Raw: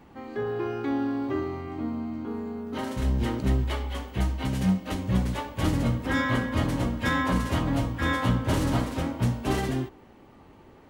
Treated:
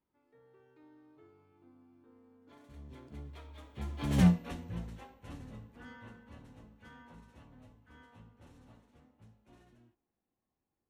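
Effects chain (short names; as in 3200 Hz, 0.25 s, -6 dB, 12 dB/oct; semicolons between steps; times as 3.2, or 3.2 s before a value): Doppler pass-by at 4.21, 32 m/s, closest 2 m; high shelf 8800 Hz -4 dB; notch 4900 Hz, Q 14; gain +2.5 dB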